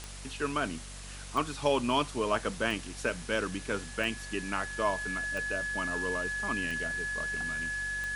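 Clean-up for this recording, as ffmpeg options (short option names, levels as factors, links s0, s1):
-af "adeclick=t=4,bandreject=f=47.8:t=h:w=4,bandreject=f=95.6:t=h:w=4,bandreject=f=143.4:t=h:w=4,bandreject=f=191.2:t=h:w=4,bandreject=f=239:t=h:w=4,bandreject=f=1700:w=30,afftdn=nr=30:nf=-43"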